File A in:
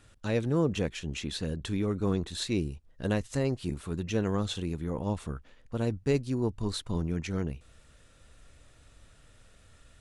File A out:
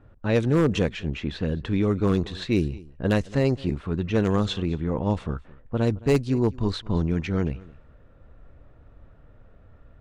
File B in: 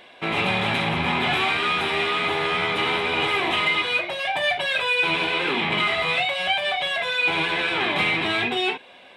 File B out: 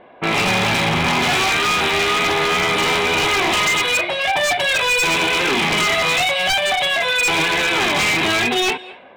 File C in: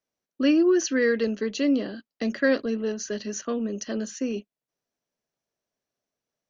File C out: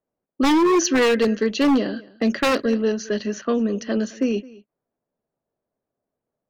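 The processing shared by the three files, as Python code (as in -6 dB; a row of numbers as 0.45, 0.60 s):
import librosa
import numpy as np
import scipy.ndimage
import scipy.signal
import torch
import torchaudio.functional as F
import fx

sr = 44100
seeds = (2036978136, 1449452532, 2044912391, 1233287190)

y = fx.env_lowpass(x, sr, base_hz=930.0, full_db=-21.5)
y = y + 10.0 ** (-21.5 / 20.0) * np.pad(y, (int(216 * sr / 1000.0), 0))[:len(y)]
y = 10.0 ** (-19.0 / 20.0) * (np.abs((y / 10.0 ** (-19.0 / 20.0) + 3.0) % 4.0 - 2.0) - 1.0)
y = y * librosa.db_to_amplitude(7.0)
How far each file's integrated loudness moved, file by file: +6.5, +5.5, +4.5 LU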